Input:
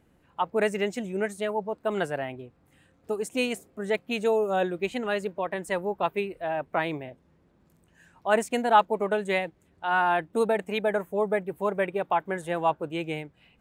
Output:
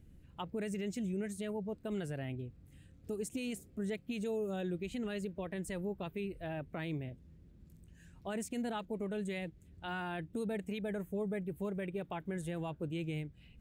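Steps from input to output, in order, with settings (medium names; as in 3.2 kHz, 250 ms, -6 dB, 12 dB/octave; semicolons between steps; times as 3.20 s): amplifier tone stack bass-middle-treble 10-0-1; in parallel at -1 dB: compression, threshold -58 dBFS, peak gain reduction 14.5 dB; on the sum: peak limiter -42.5 dBFS, peak gain reduction 9 dB; trim +13 dB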